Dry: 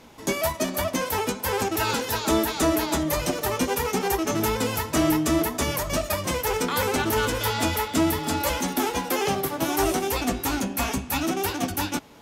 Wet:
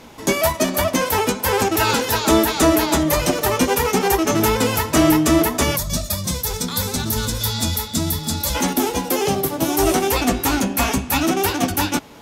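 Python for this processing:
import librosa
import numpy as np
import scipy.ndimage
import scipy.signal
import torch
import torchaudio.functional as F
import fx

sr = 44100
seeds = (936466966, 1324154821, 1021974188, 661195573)

y = fx.spec_box(x, sr, start_s=5.77, length_s=2.78, low_hz=250.0, high_hz=3300.0, gain_db=-12)
y = fx.peak_eq(y, sr, hz=1600.0, db=-7.0, octaves=2.2, at=(8.73, 9.87))
y = y * librosa.db_to_amplitude(7.0)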